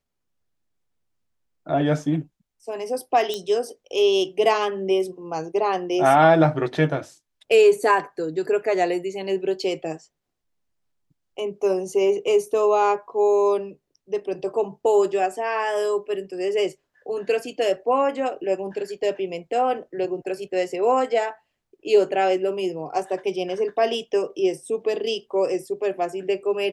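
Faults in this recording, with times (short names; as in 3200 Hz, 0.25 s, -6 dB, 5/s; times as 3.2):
3.34 pop -14 dBFS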